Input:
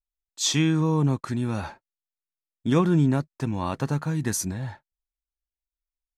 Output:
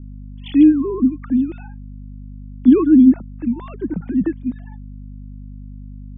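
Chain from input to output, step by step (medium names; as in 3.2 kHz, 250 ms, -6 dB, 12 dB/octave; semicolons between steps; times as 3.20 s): formants replaced by sine waves; reverb removal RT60 1.9 s; hum 50 Hz, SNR 15 dB; resonant low shelf 460 Hz +13 dB, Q 1.5; trim -5 dB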